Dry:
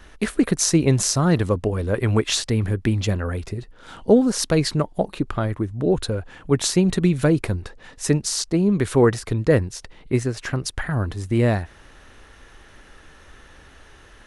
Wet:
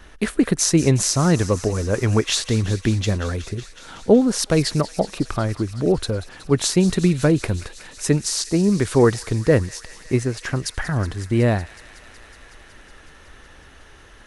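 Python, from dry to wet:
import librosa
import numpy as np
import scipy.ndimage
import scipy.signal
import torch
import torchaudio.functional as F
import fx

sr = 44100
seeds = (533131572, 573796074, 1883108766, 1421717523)

y = fx.echo_wet_highpass(x, sr, ms=185, feedback_pct=83, hz=1700.0, wet_db=-14.5)
y = y * 10.0 ** (1.0 / 20.0)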